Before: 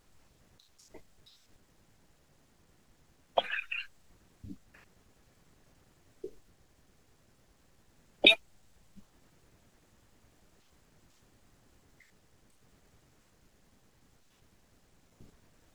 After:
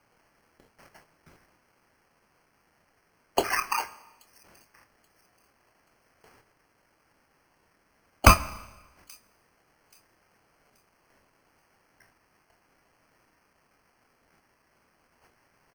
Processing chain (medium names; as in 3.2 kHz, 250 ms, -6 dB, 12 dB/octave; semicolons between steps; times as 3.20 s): gate -52 dBFS, range -7 dB; steep high-pass 710 Hz 36 dB/octave; treble shelf 3.4 kHz +10.5 dB; in parallel at -3 dB: peak limiter -9.5 dBFS, peak gain reduction 9.5 dB; on the sum: sample-and-hold 12×; integer overflow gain 2 dB; doubling 25 ms -10.5 dB; on a send: feedback echo behind a high-pass 830 ms, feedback 32%, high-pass 4.7 kHz, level -23 dB; on the sum: Schroeder reverb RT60 1.1 s, combs from 28 ms, DRR 16 dB